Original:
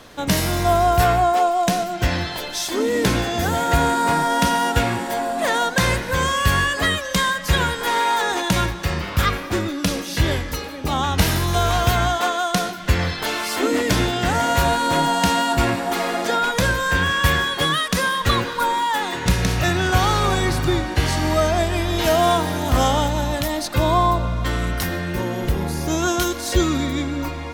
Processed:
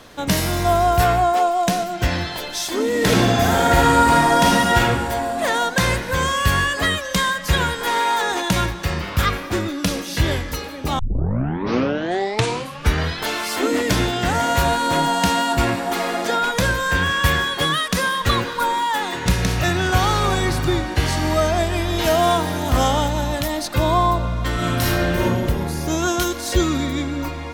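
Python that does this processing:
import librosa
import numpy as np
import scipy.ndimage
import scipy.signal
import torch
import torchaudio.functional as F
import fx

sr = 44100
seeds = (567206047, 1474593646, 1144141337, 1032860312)

y = fx.reverb_throw(x, sr, start_s=2.97, length_s=1.82, rt60_s=1.2, drr_db=-3.0)
y = fx.reverb_throw(y, sr, start_s=24.54, length_s=0.7, rt60_s=1.3, drr_db=-5.0)
y = fx.edit(y, sr, fx.tape_start(start_s=10.99, length_s=2.23), tone=tone)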